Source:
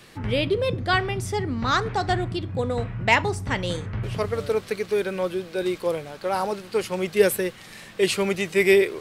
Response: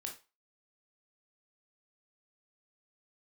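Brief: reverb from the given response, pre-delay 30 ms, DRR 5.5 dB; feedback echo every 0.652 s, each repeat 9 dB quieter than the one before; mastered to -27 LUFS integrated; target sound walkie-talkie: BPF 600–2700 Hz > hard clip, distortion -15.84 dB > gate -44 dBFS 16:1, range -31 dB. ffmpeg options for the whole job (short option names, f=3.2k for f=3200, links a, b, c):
-filter_complex "[0:a]aecho=1:1:652|1304|1956|2608:0.355|0.124|0.0435|0.0152,asplit=2[a][b];[1:a]atrim=start_sample=2205,adelay=30[c];[b][c]afir=irnorm=-1:irlink=0,volume=-3.5dB[d];[a][d]amix=inputs=2:normalize=0,highpass=600,lowpass=2.7k,asoftclip=type=hard:threshold=-16.5dB,agate=range=-31dB:threshold=-44dB:ratio=16,volume=1dB"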